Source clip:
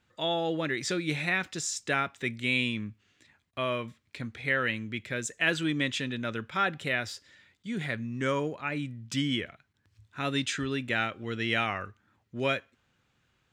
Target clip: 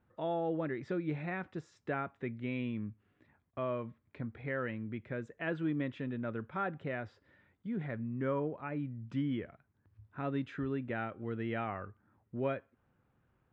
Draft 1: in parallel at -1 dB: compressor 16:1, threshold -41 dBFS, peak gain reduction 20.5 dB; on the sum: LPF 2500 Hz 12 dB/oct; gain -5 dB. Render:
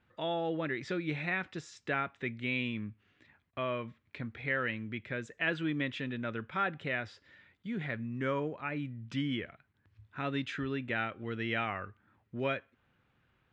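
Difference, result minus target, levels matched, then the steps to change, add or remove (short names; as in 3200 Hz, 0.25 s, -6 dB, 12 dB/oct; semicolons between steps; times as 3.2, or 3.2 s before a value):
2000 Hz band +5.5 dB
change: LPF 1100 Hz 12 dB/oct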